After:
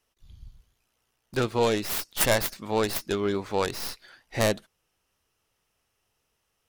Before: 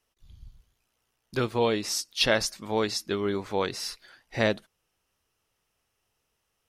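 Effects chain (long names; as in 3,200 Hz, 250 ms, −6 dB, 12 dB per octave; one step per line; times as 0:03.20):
stylus tracing distortion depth 0.41 ms
level +1.5 dB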